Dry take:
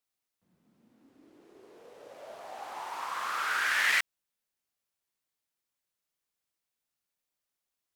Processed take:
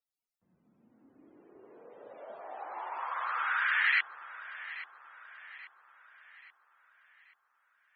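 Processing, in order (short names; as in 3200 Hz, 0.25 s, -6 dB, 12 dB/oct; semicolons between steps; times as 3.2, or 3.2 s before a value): loudest bins only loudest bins 64; echo with dull and thin repeats by turns 0.416 s, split 1100 Hz, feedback 68%, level -12 dB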